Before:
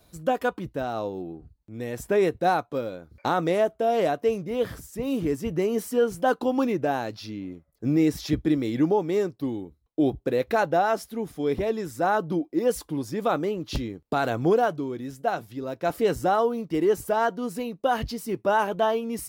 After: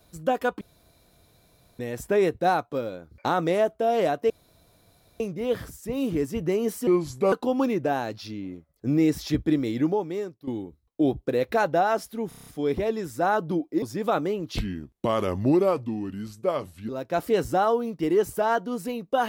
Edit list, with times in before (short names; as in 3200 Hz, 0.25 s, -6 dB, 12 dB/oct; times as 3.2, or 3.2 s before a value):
0.61–1.79 room tone
4.3 insert room tone 0.90 s
5.97–6.31 speed 75%
8.67–9.46 fade out, to -14.5 dB
11.27 stutter 0.03 s, 7 plays
12.63–13 cut
13.74–15.6 speed 80%